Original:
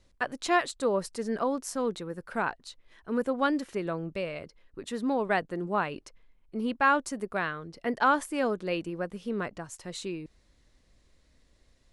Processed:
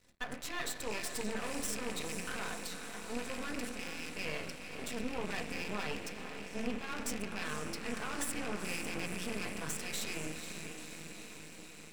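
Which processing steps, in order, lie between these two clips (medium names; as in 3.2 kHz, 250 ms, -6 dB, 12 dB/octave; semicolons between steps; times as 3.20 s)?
rattle on loud lows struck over -41 dBFS, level -16 dBFS; 3.69–4.16 s: amplifier tone stack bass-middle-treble 6-0-2; transient shaper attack -6 dB, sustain +10 dB; peak limiter -29.5 dBFS, peak gain reduction 21 dB; echo that smears into a reverb 486 ms, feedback 71%, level -7.5 dB; reverberation RT60 0.95 s, pre-delay 3 ms, DRR 1.5 dB; half-wave rectifier; trim +4.5 dB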